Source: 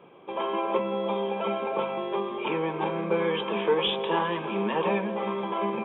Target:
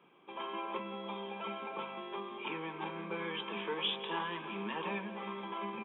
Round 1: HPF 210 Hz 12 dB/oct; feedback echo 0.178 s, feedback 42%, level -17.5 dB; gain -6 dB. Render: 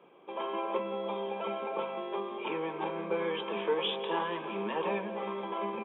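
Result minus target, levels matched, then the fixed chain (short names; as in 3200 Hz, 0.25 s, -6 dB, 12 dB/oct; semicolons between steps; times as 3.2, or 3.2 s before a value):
500 Hz band +4.5 dB
HPF 210 Hz 12 dB/oct; bell 540 Hz -11.5 dB 1.3 oct; feedback echo 0.178 s, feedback 42%, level -17.5 dB; gain -6 dB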